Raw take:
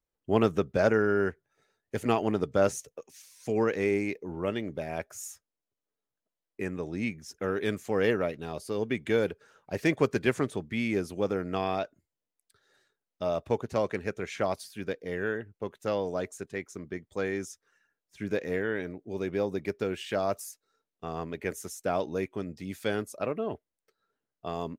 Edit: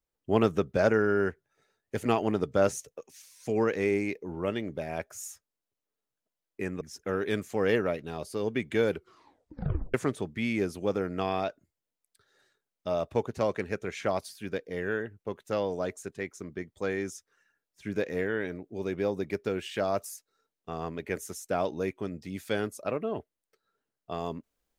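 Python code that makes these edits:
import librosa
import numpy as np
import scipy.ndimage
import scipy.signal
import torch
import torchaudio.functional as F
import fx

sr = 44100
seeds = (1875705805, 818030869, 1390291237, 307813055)

y = fx.edit(x, sr, fx.cut(start_s=6.81, length_s=0.35),
    fx.tape_stop(start_s=9.26, length_s=1.03), tone=tone)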